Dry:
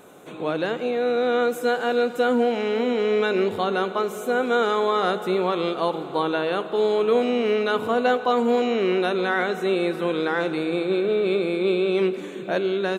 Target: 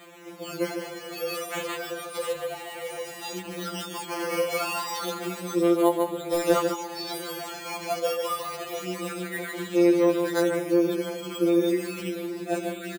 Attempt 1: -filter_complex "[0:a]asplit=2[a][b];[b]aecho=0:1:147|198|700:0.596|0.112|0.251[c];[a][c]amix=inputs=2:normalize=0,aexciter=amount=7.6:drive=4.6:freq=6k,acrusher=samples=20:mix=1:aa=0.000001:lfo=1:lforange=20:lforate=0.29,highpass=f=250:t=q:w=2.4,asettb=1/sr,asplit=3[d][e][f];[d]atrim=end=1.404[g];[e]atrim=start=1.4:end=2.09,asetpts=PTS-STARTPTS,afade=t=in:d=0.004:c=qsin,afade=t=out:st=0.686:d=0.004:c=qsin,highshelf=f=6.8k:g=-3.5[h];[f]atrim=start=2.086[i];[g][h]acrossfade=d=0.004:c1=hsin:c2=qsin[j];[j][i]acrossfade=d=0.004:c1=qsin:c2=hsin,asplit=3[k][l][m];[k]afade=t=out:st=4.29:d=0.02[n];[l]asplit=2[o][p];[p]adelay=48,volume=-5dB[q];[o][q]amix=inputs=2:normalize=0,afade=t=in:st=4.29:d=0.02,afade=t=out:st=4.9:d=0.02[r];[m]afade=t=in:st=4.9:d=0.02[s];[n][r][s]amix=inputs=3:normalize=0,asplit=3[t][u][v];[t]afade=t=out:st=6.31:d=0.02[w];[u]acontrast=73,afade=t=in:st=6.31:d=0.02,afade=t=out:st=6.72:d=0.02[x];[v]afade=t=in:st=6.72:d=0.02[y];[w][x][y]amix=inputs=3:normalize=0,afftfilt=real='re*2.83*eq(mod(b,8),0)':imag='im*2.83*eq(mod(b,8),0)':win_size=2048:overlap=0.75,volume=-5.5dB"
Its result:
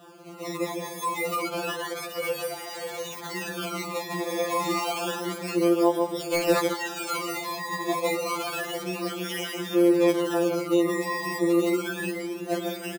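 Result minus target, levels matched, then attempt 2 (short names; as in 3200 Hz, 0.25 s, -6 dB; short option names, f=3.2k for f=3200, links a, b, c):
decimation with a swept rate: distortion +8 dB
-filter_complex "[0:a]asplit=2[a][b];[b]aecho=0:1:147|198|700:0.596|0.112|0.251[c];[a][c]amix=inputs=2:normalize=0,aexciter=amount=7.6:drive=4.6:freq=6k,acrusher=samples=8:mix=1:aa=0.000001:lfo=1:lforange=8:lforate=0.29,highpass=f=250:t=q:w=2.4,asettb=1/sr,asplit=3[d][e][f];[d]atrim=end=1.404[g];[e]atrim=start=1.4:end=2.09,asetpts=PTS-STARTPTS,afade=t=in:d=0.004:c=qsin,afade=t=out:st=0.686:d=0.004:c=qsin,highshelf=f=6.8k:g=-3.5[h];[f]atrim=start=2.086[i];[g][h]acrossfade=d=0.004:c1=hsin:c2=qsin[j];[j][i]acrossfade=d=0.004:c1=qsin:c2=hsin,asplit=3[k][l][m];[k]afade=t=out:st=4.29:d=0.02[n];[l]asplit=2[o][p];[p]adelay=48,volume=-5dB[q];[o][q]amix=inputs=2:normalize=0,afade=t=in:st=4.29:d=0.02,afade=t=out:st=4.9:d=0.02[r];[m]afade=t=in:st=4.9:d=0.02[s];[n][r][s]amix=inputs=3:normalize=0,asplit=3[t][u][v];[t]afade=t=out:st=6.31:d=0.02[w];[u]acontrast=73,afade=t=in:st=6.31:d=0.02,afade=t=out:st=6.72:d=0.02[x];[v]afade=t=in:st=6.72:d=0.02[y];[w][x][y]amix=inputs=3:normalize=0,afftfilt=real='re*2.83*eq(mod(b,8),0)':imag='im*2.83*eq(mod(b,8),0)':win_size=2048:overlap=0.75,volume=-5.5dB"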